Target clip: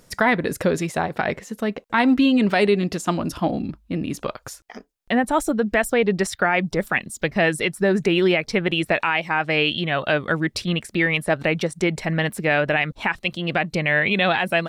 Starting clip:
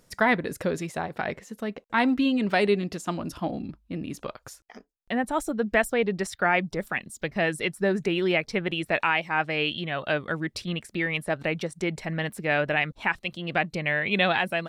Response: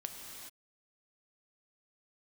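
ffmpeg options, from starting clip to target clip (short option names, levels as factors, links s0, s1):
-af "alimiter=limit=0.158:level=0:latency=1:release=99,volume=2.37"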